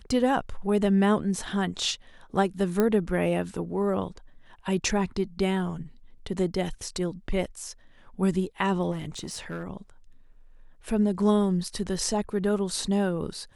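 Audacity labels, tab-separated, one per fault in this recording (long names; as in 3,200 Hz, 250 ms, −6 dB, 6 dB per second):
2.800000	2.800000	click −11 dBFS
8.910000	9.640000	clipping −28.5 dBFS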